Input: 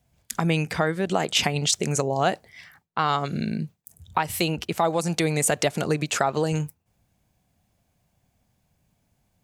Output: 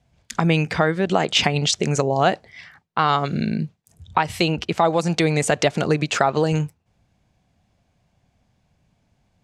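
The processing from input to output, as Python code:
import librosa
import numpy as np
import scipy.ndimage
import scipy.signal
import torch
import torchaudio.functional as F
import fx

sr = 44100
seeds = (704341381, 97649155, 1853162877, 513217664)

y = scipy.signal.sosfilt(scipy.signal.butter(2, 5500.0, 'lowpass', fs=sr, output='sos'), x)
y = y * librosa.db_to_amplitude(4.5)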